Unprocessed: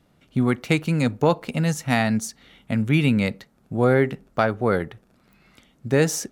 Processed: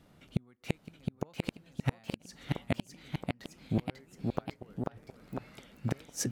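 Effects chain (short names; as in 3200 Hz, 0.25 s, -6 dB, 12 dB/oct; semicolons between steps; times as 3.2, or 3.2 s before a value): flipped gate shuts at -16 dBFS, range -40 dB; echoes that change speed 0.735 s, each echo +1 st, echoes 3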